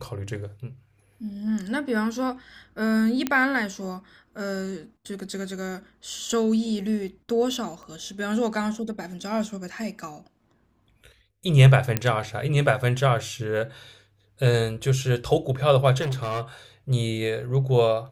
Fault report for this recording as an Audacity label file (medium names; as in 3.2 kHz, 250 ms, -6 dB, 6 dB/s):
3.270000	3.270000	pop -10 dBFS
7.830000	7.830000	pop -32 dBFS
11.970000	11.970000	pop -7 dBFS
16.010000	16.420000	clipped -24 dBFS